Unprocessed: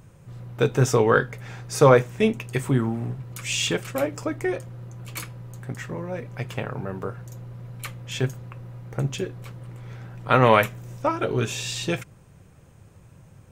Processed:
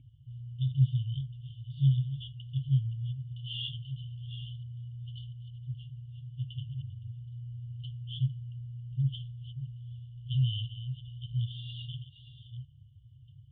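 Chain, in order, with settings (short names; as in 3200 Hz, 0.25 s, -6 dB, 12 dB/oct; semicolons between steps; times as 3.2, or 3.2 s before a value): reverse delay 0.666 s, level -12 dB; HPF 48 Hz; FFT band-reject 140–2800 Hz; vocal tract filter i; gain +8.5 dB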